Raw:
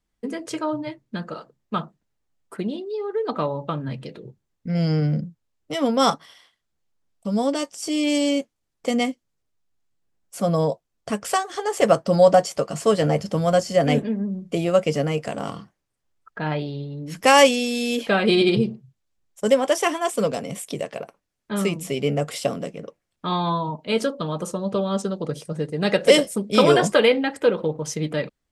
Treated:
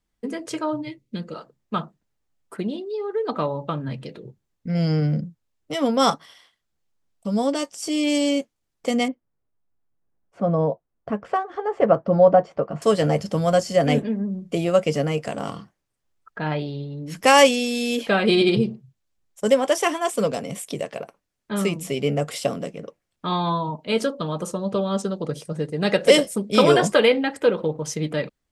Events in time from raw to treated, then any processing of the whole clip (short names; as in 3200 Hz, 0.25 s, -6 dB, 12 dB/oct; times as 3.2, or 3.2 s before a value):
0.82–1.34 spectral gain 580–1900 Hz -11 dB
9.08–12.82 LPF 1400 Hz